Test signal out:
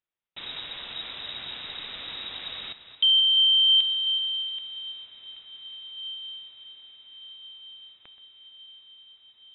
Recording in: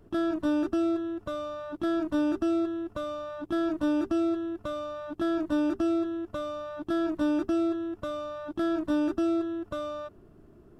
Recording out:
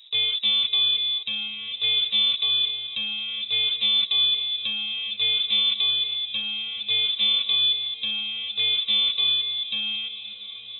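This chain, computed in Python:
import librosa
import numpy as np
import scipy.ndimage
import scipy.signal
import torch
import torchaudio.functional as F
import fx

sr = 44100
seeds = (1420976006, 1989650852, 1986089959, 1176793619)

y = fx.reverse_delay(x, sr, ms=246, wet_db=-13.5)
y = fx.freq_invert(y, sr, carrier_hz=3800)
y = fx.echo_diffused(y, sr, ms=1458, feedback_pct=62, wet_db=-16.0)
y = F.gain(torch.from_numpy(y), 4.5).numpy()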